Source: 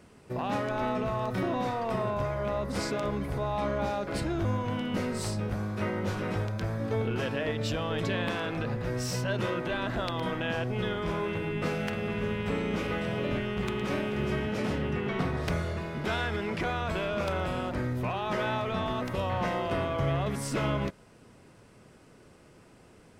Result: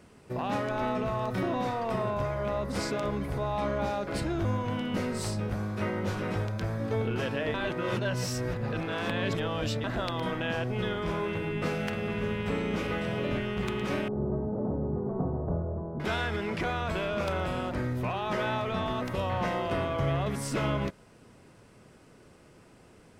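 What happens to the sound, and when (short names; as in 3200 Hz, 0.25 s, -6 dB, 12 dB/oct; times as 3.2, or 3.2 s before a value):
7.54–9.84 reverse
14.08–16 inverse Chebyshev low-pass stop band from 2300 Hz, stop band 50 dB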